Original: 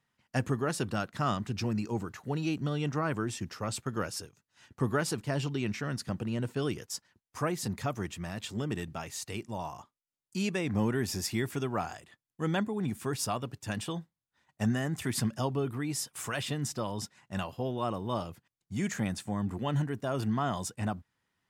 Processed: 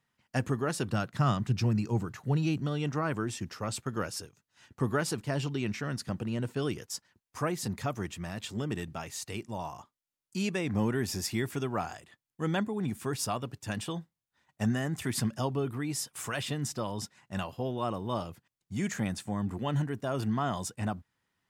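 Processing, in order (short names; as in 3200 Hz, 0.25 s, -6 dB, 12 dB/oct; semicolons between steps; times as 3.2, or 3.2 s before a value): 0.92–2.6 bell 130 Hz +9 dB 0.73 oct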